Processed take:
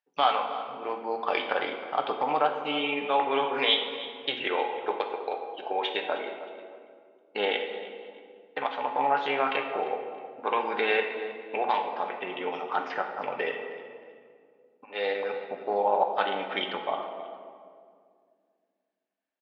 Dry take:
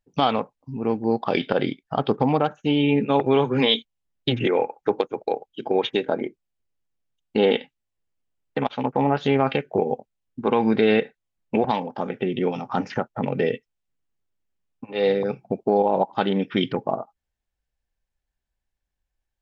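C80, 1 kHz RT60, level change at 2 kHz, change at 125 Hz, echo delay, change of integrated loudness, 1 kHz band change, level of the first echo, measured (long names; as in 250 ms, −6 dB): 7.5 dB, 1.9 s, +0.5 dB, below −20 dB, 314 ms, −5.5 dB, −1.0 dB, −16.5 dB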